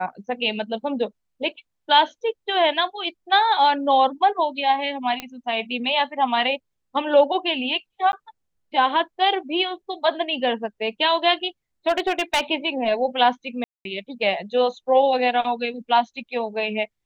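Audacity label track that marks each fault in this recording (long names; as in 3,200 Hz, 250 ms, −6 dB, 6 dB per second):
5.200000	5.200000	click −13 dBFS
8.120000	8.130000	drop-out 11 ms
11.880000	12.410000	clipping −15.5 dBFS
13.640000	13.850000	drop-out 212 ms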